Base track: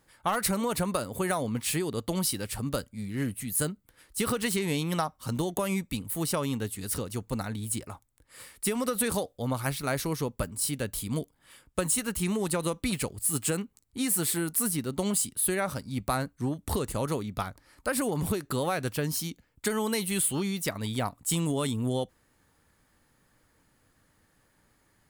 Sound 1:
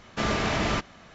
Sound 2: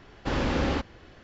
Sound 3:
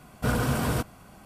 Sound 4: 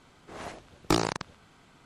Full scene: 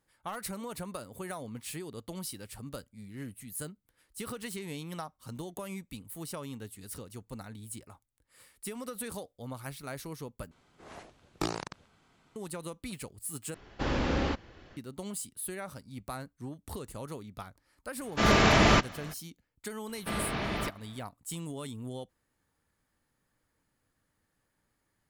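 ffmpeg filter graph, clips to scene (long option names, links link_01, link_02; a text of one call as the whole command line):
ffmpeg -i bed.wav -i cue0.wav -i cue1.wav -i cue2.wav -i cue3.wav -filter_complex "[1:a]asplit=2[link_01][link_02];[0:a]volume=-11dB[link_03];[link_01]dynaudnorm=framelen=140:gausssize=3:maxgain=12.5dB[link_04];[link_02]lowpass=frequency=4800:width=0.5412,lowpass=frequency=4800:width=1.3066[link_05];[link_03]asplit=3[link_06][link_07][link_08];[link_06]atrim=end=10.514[link_09];[4:a]atrim=end=1.85,asetpts=PTS-STARTPTS,volume=-8dB[link_10];[link_07]atrim=start=12.356:end=13.544[link_11];[2:a]atrim=end=1.23,asetpts=PTS-STARTPTS,volume=-3dB[link_12];[link_08]atrim=start=14.766[link_13];[link_04]atrim=end=1.14,asetpts=PTS-STARTPTS,volume=-6.5dB,afade=type=in:duration=0.004:curve=hsin,afade=type=out:start_time=1.136:duration=0.004:curve=hsin,adelay=18000[link_14];[link_05]atrim=end=1.14,asetpts=PTS-STARTPTS,volume=-7.5dB,afade=type=in:duration=0.004:curve=hsin,afade=type=out:start_time=1.136:duration=0.004:curve=hsin,adelay=19890[link_15];[link_09][link_10]acrossfade=duration=0.004:curve1=hsin:curve2=hsin[link_16];[link_16][link_11]acrossfade=duration=0.004:curve1=hsin:curve2=hsin[link_17];[link_17][link_12]acrossfade=duration=0.004:curve1=hsin:curve2=hsin[link_18];[link_18][link_13]acrossfade=duration=0.004:curve1=hsin:curve2=hsin[link_19];[link_19][link_14][link_15]amix=inputs=3:normalize=0" out.wav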